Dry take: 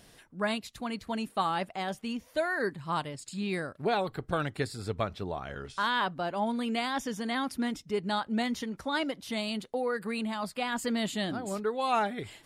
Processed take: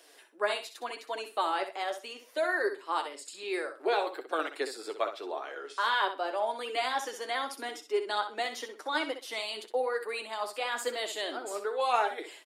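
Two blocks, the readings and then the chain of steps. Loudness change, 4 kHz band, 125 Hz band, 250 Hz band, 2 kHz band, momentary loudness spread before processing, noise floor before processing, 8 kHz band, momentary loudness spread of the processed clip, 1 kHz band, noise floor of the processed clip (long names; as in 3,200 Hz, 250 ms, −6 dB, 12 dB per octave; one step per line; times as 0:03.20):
−0.5 dB, +0.5 dB, below −30 dB, −12.0 dB, +1.0 dB, 6 LU, −58 dBFS, +0.5 dB, 9 LU, +0.5 dB, −56 dBFS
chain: Butterworth high-pass 320 Hz 48 dB per octave
flanger 0.9 Hz, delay 6 ms, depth 4.7 ms, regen +34%
on a send: repeating echo 63 ms, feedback 21%, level −9.5 dB
on the sum: level +4 dB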